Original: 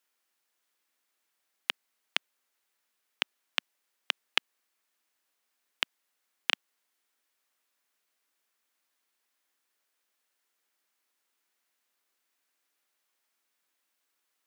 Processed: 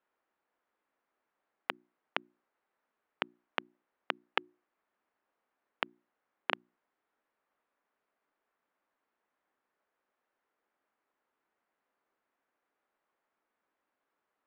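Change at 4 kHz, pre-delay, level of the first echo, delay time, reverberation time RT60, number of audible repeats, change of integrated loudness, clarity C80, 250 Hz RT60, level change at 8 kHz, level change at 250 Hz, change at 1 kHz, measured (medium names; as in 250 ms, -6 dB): -11.0 dB, no reverb, no echo, no echo, no reverb, no echo, -6.0 dB, no reverb, no reverb, under -20 dB, +5.5 dB, +3.5 dB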